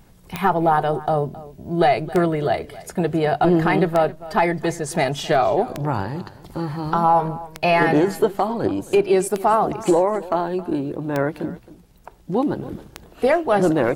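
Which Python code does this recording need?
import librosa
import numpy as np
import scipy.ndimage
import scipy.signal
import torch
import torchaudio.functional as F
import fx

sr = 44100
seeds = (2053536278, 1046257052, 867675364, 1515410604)

y = fx.fix_declick_ar(x, sr, threshold=10.0)
y = fx.fix_echo_inverse(y, sr, delay_ms=268, level_db=-18.0)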